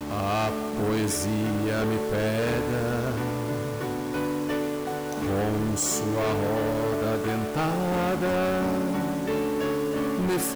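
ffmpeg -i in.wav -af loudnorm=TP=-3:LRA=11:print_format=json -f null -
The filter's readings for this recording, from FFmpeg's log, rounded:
"input_i" : "-26.5",
"input_tp" : "-18.6",
"input_lra" : "1.8",
"input_thresh" : "-36.5",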